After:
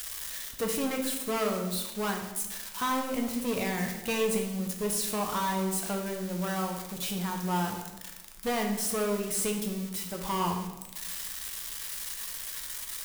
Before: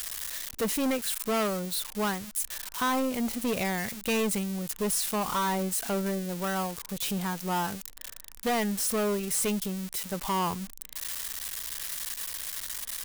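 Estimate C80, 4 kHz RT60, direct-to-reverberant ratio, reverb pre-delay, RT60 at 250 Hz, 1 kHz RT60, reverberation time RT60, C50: 8.5 dB, 0.80 s, 2.0 dB, 6 ms, 1.3 s, 1.0 s, 1.1 s, 6.0 dB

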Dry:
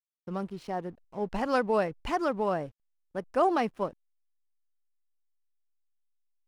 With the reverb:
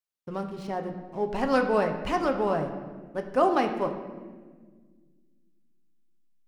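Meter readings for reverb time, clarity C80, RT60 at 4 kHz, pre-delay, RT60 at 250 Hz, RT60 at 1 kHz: 1.5 s, 9.5 dB, 1.0 s, 7 ms, 2.6 s, 1.3 s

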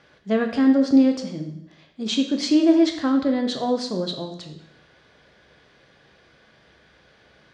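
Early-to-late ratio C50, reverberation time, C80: 8.0 dB, 0.75 s, 10.5 dB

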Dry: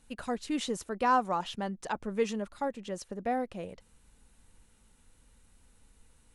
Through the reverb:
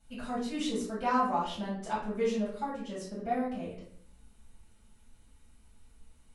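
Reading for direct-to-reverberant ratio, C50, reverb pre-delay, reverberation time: −9.0 dB, 3.5 dB, 4 ms, 0.60 s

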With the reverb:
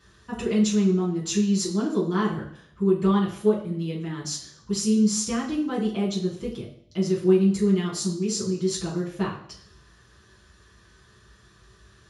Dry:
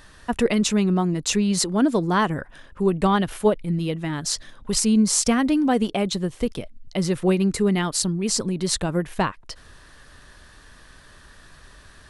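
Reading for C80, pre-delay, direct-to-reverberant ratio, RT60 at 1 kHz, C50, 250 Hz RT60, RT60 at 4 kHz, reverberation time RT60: 11.0 dB, 3 ms, −8.0 dB, 0.60 s, 7.5 dB, 0.65 s, 0.70 s, 0.60 s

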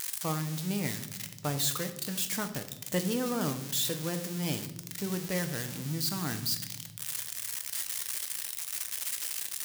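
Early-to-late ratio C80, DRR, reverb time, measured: 14.5 dB, 7.0 dB, non-exponential decay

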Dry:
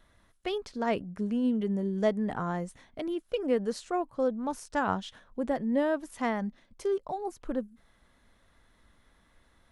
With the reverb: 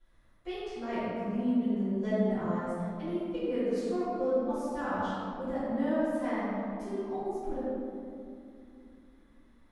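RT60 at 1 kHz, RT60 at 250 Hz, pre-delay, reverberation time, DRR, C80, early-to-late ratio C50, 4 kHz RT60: 2.4 s, 4.1 s, 3 ms, 2.7 s, −17.0 dB, −2.5 dB, −5.0 dB, 1.3 s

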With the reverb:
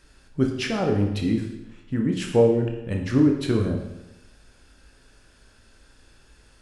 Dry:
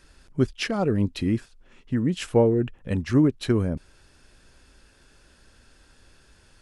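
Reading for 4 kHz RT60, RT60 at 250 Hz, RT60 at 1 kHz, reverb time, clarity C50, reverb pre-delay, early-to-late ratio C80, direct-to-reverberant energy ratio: 0.90 s, 0.95 s, 0.95 s, 0.95 s, 5.0 dB, 19 ms, 7.5 dB, 1.5 dB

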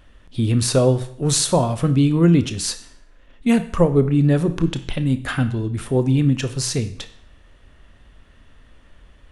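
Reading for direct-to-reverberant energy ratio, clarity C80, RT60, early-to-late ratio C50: 10.0 dB, 16.5 dB, 0.60 s, 13.5 dB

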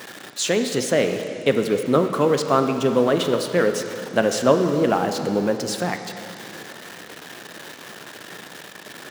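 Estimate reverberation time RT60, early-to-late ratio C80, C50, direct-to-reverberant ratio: 2.8 s, 8.0 dB, 7.0 dB, 6.0 dB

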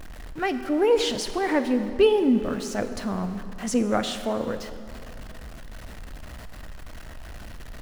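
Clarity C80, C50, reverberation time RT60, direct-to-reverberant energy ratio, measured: 11.0 dB, 10.0 dB, 2.8 s, 9.5 dB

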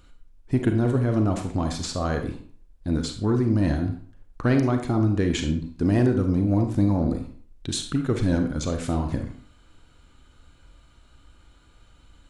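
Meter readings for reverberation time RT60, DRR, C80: 0.50 s, 5.0 dB, 11.5 dB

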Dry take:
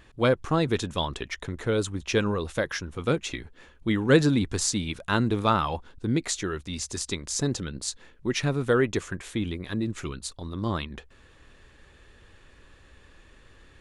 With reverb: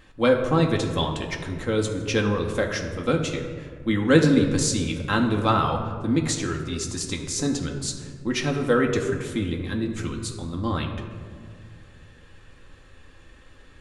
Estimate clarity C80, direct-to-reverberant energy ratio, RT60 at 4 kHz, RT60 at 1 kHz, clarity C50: 8.0 dB, 1.0 dB, 0.90 s, 1.8 s, 6.5 dB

